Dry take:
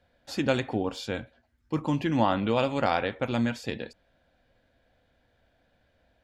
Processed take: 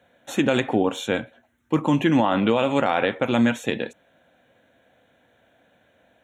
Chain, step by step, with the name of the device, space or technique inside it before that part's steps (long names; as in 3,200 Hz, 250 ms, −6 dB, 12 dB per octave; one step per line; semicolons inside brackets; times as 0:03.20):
PA system with an anti-feedback notch (high-pass filter 160 Hz 12 dB per octave; Butterworth band-reject 4,800 Hz, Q 2.3; brickwall limiter −18 dBFS, peak gain reduction 8 dB)
level +9 dB